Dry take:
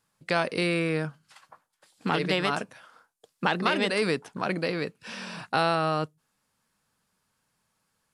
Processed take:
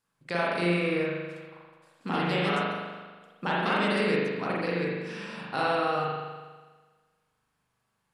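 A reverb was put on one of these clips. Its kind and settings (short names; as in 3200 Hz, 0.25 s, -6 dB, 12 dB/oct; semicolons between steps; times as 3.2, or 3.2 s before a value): spring tank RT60 1.4 s, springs 40 ms, chirp 50 ms, DRR -6 dB; gain -7.5 dB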